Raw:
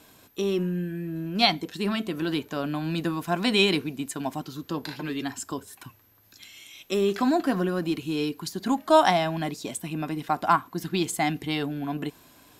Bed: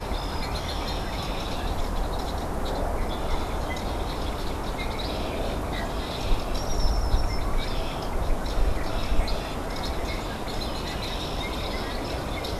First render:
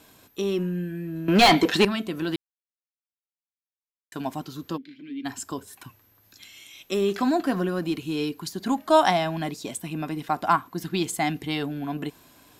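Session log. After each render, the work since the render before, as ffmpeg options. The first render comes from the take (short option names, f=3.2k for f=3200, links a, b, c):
-filter_complex "[0:a]asettb=1/sr,asplit=3[a][b][c];[a]atrim=end=1.284[d];[b]atrim=start=1.28:end=1.85,asetpts=PTS-STARTPTS,afade=t=in:d=0.004:c=qsin,afade=t=out:st=0.566:d=0.004:c=qsin,asplit=2[e][f];[f]highpass=f=720:p=1,volume=29dB,asoftclip=type=tanh:threshold=-5.5dB[g];[e][g]amix=inputs=2:normalize=0,lowpass=f=2.1k:p=1,volume=-6dB[h];[c]atrim=start=1.846[i];[d][h]acrossfade=d=0.004:c1=hsin:c2=qsin[j];[j][i]acrossfade=d=0.004:c1=qsin:c2=hsin,asplit=3[k][l][m];[k]afade=t=out:st=4.76:d=0.02[n];[l]asplit=3[o][p][q];[o]bandpass=f=270:t=q:w=8,volume=0dB[r];[p]bandpass=f=2.29k:t=q:w=8,volume=-6dB[s];[q]bandpass=f=3.01k:t=q:w=8,volume=-9dB[t];[r][s][t]amix=inputs=3:normalize=0,afade=t=in:st=4.76:d=0.02,afade=t=out:st=5.24:d=0.02[u];[m]afade=t=in:st=5.24:d=0.02[v];[n][u][v]amix=inputs=3:normalize=0,asplit=3[w][x][y];[w]atrim=end=2.36,asetpts=PTS-STARTPTS,afade=t=out:st=2.356:d=0.004:c=hsin[z];[x]atrim=start=2.36:end=4.12,asetpts=PTS-STARTPTS,volume=0[aa];[y]atrim=start=4.12,asetpts=PTS-STARTPTS,afade=t=in:d=0.004:c=hsin[ab];[z][aa][ab]concat=n=3:v=0:a=1"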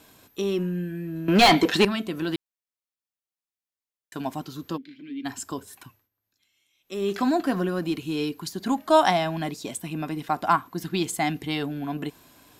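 -filter_complex "[0:a]asplit=3[a][b][c];[a]atrim=end=6.09,asetpts=PTS-STARTPTS,afade=t=out:st=5.76:d=0.33:silence=0.0707946[d];[b]atrim=start=6.09:end=6.82,asetpts=PTS-STARTPTS,volume=-23dB[e];[c]atrim=start=6.82,asetpts=PTS-STARTPTS,afade=t=in:d=0.33:silence=0.0707946[f];[d][e][f]concat=n=3:v=0:a=1"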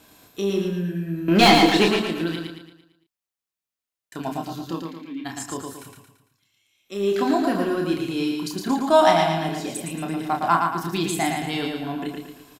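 -filter_complex "[0:a]asplit=2[a][b];[b]adelay=30,volume=-5dB[c];[a][c]amix=inputs=2:normalize=0,aecho=1:1:113|226|339|452|565|678:0.631|0.284|0.128|0.0575|0.0259|0.0116"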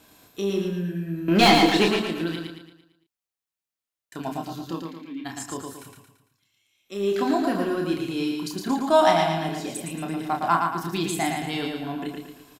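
-af "volume=-2dB"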